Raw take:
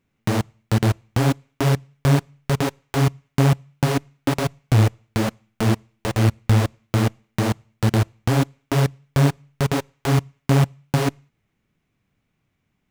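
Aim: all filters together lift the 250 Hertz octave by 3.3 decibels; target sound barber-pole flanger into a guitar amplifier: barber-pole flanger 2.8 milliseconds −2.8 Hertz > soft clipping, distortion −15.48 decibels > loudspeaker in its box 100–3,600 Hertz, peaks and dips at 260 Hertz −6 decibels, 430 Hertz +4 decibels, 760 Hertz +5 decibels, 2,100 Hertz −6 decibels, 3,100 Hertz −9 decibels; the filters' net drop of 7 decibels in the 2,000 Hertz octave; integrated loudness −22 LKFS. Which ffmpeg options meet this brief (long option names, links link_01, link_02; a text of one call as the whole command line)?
ffmpeg -i in.wav -filter_complex "[0:a]equalizer=frequency=250:width_type=o:gain=8,equalizer=frequency=2000:width_type=o:gain=-6,asplit=2[link_01][link_02];[link_02]adelay=2.8,afreqshift=-2.8[link_03];[link_01][link_03]amix=inputs=2:normalize=1,asoftclip=threshold=-12.5dB,highpass=100,equalizer=frequency=260:width_type=q:width=4:gain=-6,equalizer=frequency=430:width_type=q:width=4:gain=4,equalizer=frequency=760:width_type=q:width=4:gain=5,equalizer=frequency=2100:width_type=q:width=4:gain=-6,equalizer=frequency=3100:width_type=q:width=4:gain=-9,lowpass=frequency=3600:width=0.5412,lowpass=frequency=3600:width=1.3066,volume=4dB" out.wav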